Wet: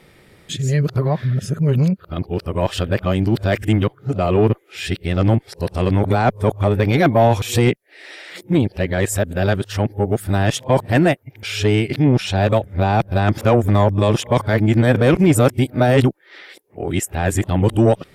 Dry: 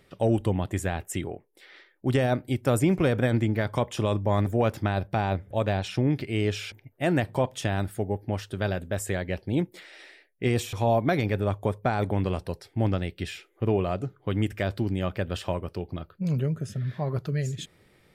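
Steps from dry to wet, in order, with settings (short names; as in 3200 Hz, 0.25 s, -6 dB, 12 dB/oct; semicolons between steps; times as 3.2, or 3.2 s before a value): whole clip reversed; added harmonics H 5 -24 dB, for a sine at -11 dBFS; gain +8.5 dB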